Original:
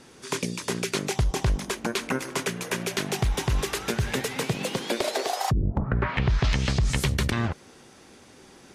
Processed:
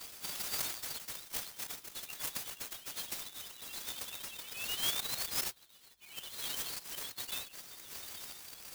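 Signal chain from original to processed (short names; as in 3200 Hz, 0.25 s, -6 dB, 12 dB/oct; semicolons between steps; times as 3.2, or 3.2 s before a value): zero-crossing step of -32.5 dBFS; inverse Chebyshev high-pass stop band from 1200 Hz, stop band 50 dB; limiter -25 dBFS, peak gain reduction 9.5 dB; rotary speaker horn 1.2 Hz; loudest bins only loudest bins 4; tilt +3.5 dB/oct; clock jitter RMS 0.048 ms; gain +4.5 dB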